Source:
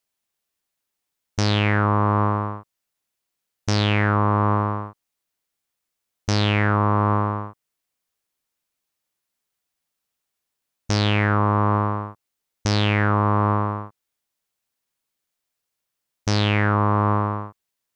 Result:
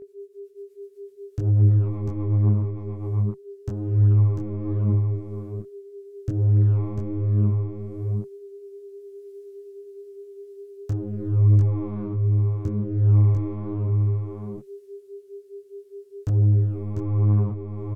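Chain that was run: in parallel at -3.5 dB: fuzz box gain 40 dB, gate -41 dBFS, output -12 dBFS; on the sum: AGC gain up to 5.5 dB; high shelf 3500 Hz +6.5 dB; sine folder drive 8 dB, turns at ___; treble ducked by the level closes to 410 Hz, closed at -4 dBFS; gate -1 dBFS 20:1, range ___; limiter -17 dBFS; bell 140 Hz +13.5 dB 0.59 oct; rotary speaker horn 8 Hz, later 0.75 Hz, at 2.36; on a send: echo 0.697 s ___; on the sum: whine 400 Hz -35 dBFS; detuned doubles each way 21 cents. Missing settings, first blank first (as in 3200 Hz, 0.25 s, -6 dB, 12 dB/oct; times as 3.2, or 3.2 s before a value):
1.5 dBFS, -10 dB, -4 dB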